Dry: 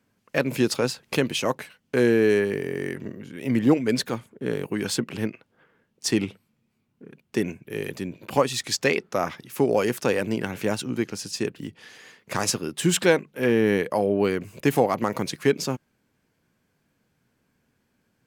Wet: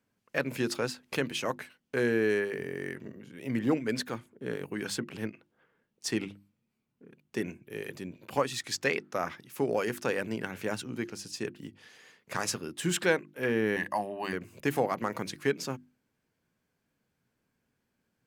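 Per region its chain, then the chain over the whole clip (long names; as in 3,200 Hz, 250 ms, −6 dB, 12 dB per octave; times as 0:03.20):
0:13.76–0:14.33: high-pass filter 270 Hz 6 dB per octave + comb filter 1.1 ms, depth 95%
whole clip: mains-hum notches 50/100/150/200/250/300/350 Hz; dynamic equaliser 1,600 Hz, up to +5 dB, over −40 dBFS, Q 1.5; level −8 dB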